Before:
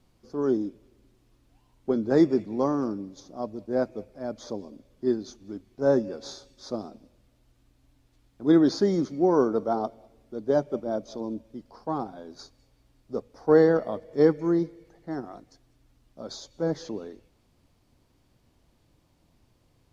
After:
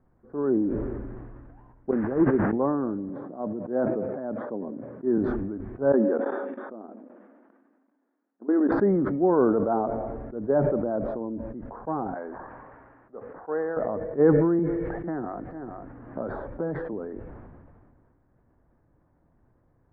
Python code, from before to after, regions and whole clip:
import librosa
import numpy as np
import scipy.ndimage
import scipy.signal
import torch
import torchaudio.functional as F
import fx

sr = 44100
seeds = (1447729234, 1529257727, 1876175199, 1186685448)

y = fx.chain(x, sr, fx.delta_mod(bps=16000, step_db=-32.0),
    fx.upward_expand(threshold_db=-28.0, expansion=2.5), at=(1.91, 2.53))
y = fx.chain(y, sr, fx.highpass(hz=140.0, slope=24),
    fx.air_absorb(metres=310.0),
    fx.sustainer(db_per_s=110.0), at=(3.09, 5.18))
y = fx.chain(y, sr, fx.level_steps(step_db=20),
    fx.brickwall_bandpass(low_hz=200.0, high_hz=3700.0), at=(5.92, 8.72))
y = fx.chain(y, sr, fx.highpass(hz=1500.0, slope=6),
    fx.air_absorb(metres=95.0),
    fx.resample_linear(factor=8), at=(12.14, 13.77))
y = fx.chain(y, sr, fx.lowpass(hz=4700.0, slope=12),
    fx.echo_single(ms=446, db=-18.0),
    fx.band_squash(depth_pct=100), at=(14.59, 16.93))
y = scipy.signal.sosfilt(scipy.signal.cheby1(4, 1.0, 1700.0, 'lowpass', fs=sr, output='sos'), y)
y = fx.sustainer(y, sr, db_per_s=27.0)